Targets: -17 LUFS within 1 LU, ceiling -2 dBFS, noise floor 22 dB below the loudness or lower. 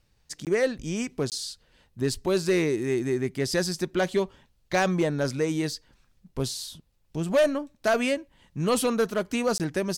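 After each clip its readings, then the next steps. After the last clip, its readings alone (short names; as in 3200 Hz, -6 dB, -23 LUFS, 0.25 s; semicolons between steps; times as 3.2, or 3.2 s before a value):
clipped 0.6%; flat tops at -16.0 dBFS; dropouts 3; longest dropout 18 ms; loudness -27.0 LUFS; peak -16.0 dBFS; loudness target -17.0 LUFS
-> clip repair -16 dBFS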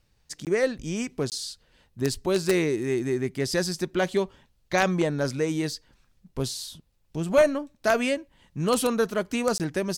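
clipped 0.0%; dropouts 3; longest dropout 18 ms
-> interpolate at 0.45/1.3/9.58, 18 ms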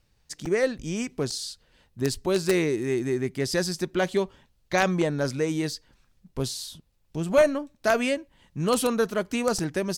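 dropouts 0; loudness -26.5 LUFS; peak -7.0 dBFS; loudness target -17.0 LUFS
-> gain +9.5 dB; limiter -2 dBFS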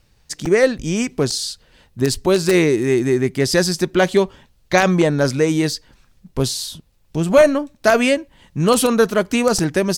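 loudness -17.5 LUFS; peak -2.0 dBFS; noise floor -57 dBFS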